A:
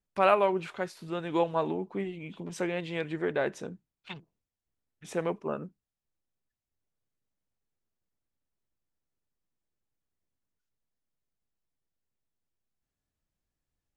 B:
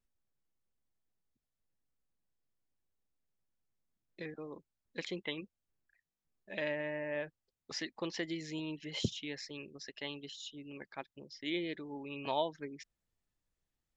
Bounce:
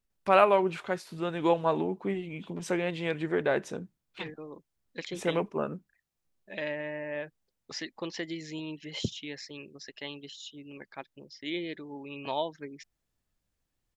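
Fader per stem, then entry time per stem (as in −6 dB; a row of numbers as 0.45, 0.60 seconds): +2.0, +2.0 decibels; 0.10, 0.00 seconds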